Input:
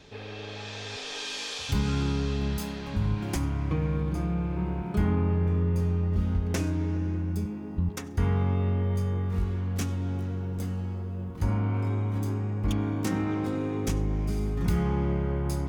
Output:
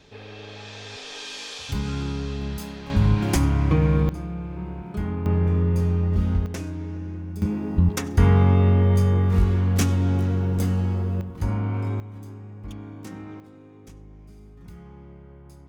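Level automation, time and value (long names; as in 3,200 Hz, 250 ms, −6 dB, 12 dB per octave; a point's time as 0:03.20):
−1 dB
from 0:02.90 +8.5 dB
from 0:04.09 −3 dB
from 0:05.26 +4.5 dB
from 0:06.46 −3.5 dB
from 0:07.42 +9 dB
from 0:11.21 +1.5 dB
from 0:12.00 −10 dB
from 0:13.40 −18 dB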